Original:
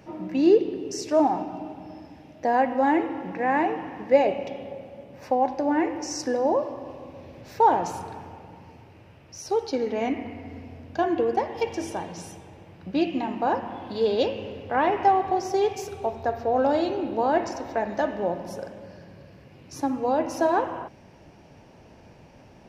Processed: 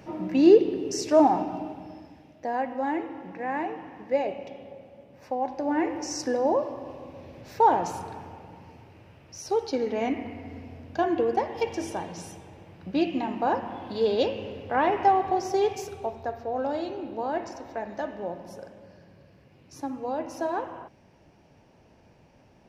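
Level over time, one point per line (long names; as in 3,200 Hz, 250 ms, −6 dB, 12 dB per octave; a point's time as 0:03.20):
0:01.55 +2 dB
0:02.46 −7 dB
0:05.32 −7 dB
0:05.91 −1 dB
0:15.74 −1 dB
0:16.43 −7 dB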